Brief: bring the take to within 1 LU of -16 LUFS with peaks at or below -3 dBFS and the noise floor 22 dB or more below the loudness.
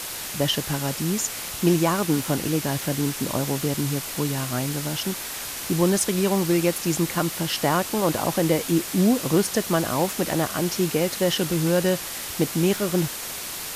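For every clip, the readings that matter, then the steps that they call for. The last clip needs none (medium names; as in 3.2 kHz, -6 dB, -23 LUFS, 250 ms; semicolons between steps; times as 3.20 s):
noise floor -33 dBFS; noise floor target -46 dBFS; loudness -23.5 LUFS; peak level -7.5 dBFS; loudness target -16.0 LUFS
-> noise print and reduce 13 dB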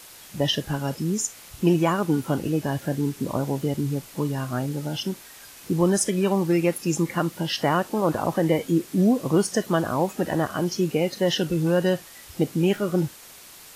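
noise floor -46 dBFS; noise floor target -47 dBFS
-> noise print and reduce 6 dB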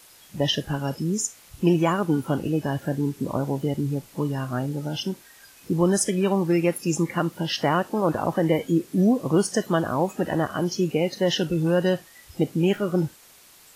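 noise floor -52 dBFS; loudness -24.5 LUFS; peak level -8.5 dBFS; loudness target -16.0 LUFS
-> trim +8.5 dB; peak limiter -3 dBFS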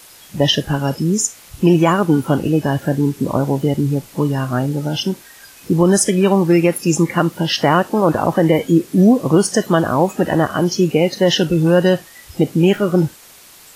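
loudness -16.0 LUFS; peak level -3.0 dBFS; noise floor -43 dBFS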